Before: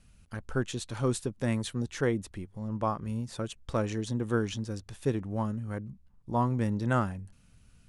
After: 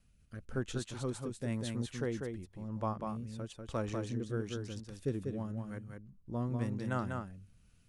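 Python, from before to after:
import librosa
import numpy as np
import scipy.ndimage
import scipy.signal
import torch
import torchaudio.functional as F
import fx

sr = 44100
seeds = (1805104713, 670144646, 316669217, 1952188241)

y = fx.rotary(x, sr, hz=1.0)
y = y + 10.0 ** (-4.5 / 20.0) * np.pad(y, (int(194 * sr / 1000.0), 0))[:len(y)]
y = F.gain(torch.from_numpy(y), -6.0).numpy()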